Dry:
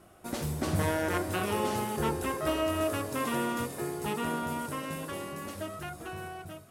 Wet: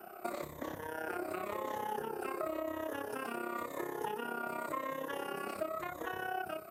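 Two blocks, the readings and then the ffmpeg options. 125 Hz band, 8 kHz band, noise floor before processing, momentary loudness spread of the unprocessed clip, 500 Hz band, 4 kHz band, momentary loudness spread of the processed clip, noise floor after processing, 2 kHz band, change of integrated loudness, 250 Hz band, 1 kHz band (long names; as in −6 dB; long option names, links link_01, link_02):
−20.0 dB, −13.5 dB, −52 dBFS, 11 LU, −6.0 dB, −11.5 dB, 3 LU, −49 dBFS, −5.0 dB, −7.0 dB, −10.0 dB, −4.5 dB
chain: -filter_complex "[0:a]afftfilt=real='re*pow(10,11/40*sin(2*PI*(1.1*log(max(b,1)*sr/1024/100)/log(2)-(-0.93)*(pts-256)/sr)))':imag='im*pow(10,11/40*sin(2*PI*(1.1*log(max(b,1)*sr/1024/100)/log(2)-(-0.93)*(pts-256)/sr)))':win_size=1024:overlap=0.75,acrossover=split=290|7300[link_01][link_02][link_03];[link_02]alimiter=level_in=1.5dB:limit=-24dB:level=0:latency=1:release=30,volume=-1.5dB[link_04];[link_01][link_04][link_03]amix=inputs=3:normalize=0,acompressor=threshold=-39dB:ratio=16,tremolo=f=33:d=0.71,aeval=exprs='val(0)+0.00126*sin(2*PI*14000*n/s)':channel_layout=same,acrossover=split=310 2300:gain=0.112 1 0.251[link_05][link_06][link_07];[link_05][link_06][link_07]amix=inputs=3:normalize=0,volume=10dB"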